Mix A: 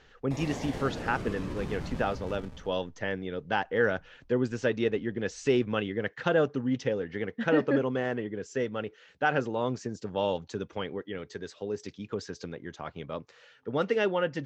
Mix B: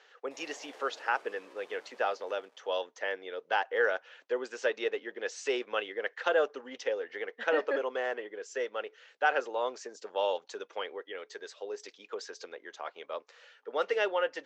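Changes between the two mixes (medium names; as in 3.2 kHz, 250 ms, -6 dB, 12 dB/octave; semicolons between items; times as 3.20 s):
background -11.0 dB; master: add high-pass 460 Hz 24 dB/octave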